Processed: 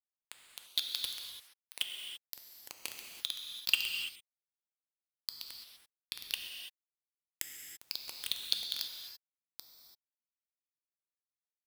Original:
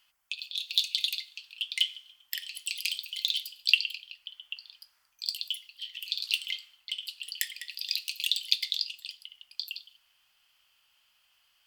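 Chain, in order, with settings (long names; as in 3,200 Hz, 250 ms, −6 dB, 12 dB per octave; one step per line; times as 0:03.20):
centre clipping without the shift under −18 dBFS
reverb whose tail is shaped and stops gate 360 ms flat, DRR 2.5 dB
level −6 dB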